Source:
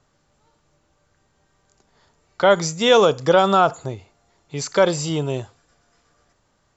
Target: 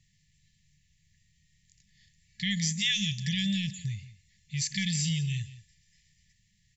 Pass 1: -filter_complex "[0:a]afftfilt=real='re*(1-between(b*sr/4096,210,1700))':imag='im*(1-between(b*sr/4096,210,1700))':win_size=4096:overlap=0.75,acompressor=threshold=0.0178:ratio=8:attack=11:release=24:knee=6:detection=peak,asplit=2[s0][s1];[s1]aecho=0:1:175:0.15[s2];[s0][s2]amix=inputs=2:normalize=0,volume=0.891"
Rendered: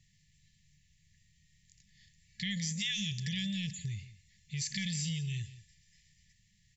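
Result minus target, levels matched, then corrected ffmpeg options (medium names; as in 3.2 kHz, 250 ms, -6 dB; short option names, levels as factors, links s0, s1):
compression: peak gain reduction +8 dB
-filter_complex "[0:a]afftfilt=real='re*(1-between(b*sr/4096,210,1700))':imag='im*(1-between(b*sr/4096,210,1700))':win_size=4096:overlap=0.75,acompressor=threshold=0.0501:ratio=8:attack=11:release=24:knee=6:detection=peak,asplit=2[s0][s1];[s1]aecho=0:1:175:0.15[s2];[s0][s2]amix=inputs=2:normalize=0,volume=0.891"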